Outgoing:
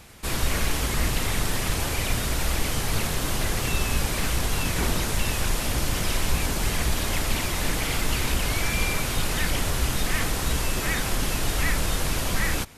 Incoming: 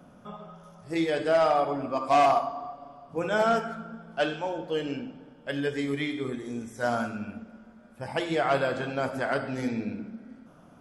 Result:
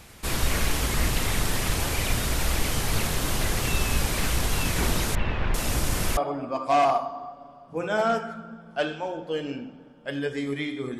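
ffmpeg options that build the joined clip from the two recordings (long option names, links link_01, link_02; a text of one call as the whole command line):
ffmpeg -i cue0.wav -i cue1.wav -filter_complex "[0:a]asettb=1/sr,asplit=3[link_01][link_02][link_03];[link_01]atrim=end=5.154[link_04];[link_02]atrim=start=5.15:end=6.17,asetpts=PTS-STARTPTS,afade=type=in:duration=0.004:curve=qsin,afade=type=out:start_time=1.016:duration=0.004:curve=qsin,acrossover=split=3000[link_05][link_06];[link_06]adelay=390[link_07];[link_05][link_07]amix=inputs=2:normalize=0,atrim=end_sample=44982[link_08];[link_03]atrim=start=6.166[link_09];[link_04][link_08]acrossfade=duration=0.004:curve1=hsin:curve2=qsin[link_10];[link_10][link_09]acrossfade=duration=0.004:curve1=qsin:curve2=hsin,apad=whole_dur=10.99,atrim=end=10.99,atrim=end=6.172[link_11];[1:a]atrim=start=1.578:end=6.4[link_12];[link_11][link_12]acrossfade=duration=0.004:curve1=hsin:curve2=hsin" out.wav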